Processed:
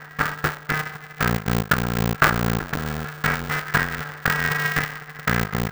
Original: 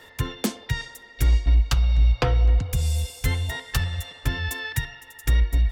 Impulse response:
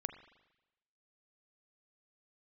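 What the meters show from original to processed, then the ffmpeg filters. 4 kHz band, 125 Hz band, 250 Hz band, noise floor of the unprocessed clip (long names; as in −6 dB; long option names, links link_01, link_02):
+1.0 dB, −3.0 dB, +8.0 dB, −49 dBFS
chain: -filter_complex "[0:a]tiltshelf=frequency=710:gain=-7.5,aeval=exprs='max(val(0),0)':channel_layout=same,lowpass=frequency=1500:width_type=q:width=13,asplit=2[link_01][link_02];[link_02]adynamicsmooth=sensitivity=7:basefreq=960,volume=0dB[link_03];[link_01][link_03]amix=inputs=2:normalize=0,aeval=exprs='val(0)*sgn(sin(2*PI*150*n/s))':channel_layout=same,volume=-2dB"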